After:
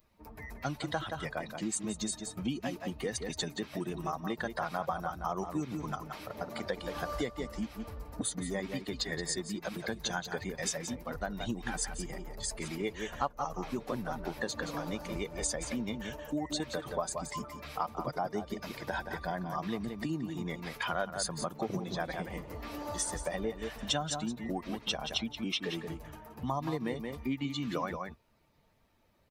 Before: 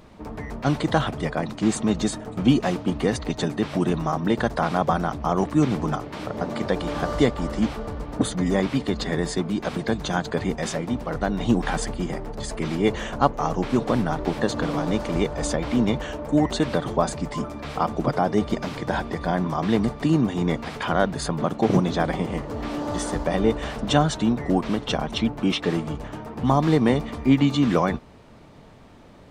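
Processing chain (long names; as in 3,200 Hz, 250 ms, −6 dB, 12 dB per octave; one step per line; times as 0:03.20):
spectral dynamics exaggerated over time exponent 1.5
high-shelf EQ 5,800 Hz +10.5 dB
slap from a distant wall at 30 metres, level −9 dB
downward compressor 3 to 1, threshold −30 dBFS, peak gain reduction 12.5 dB
low-shelf EQ 390 Hz −6.5 dB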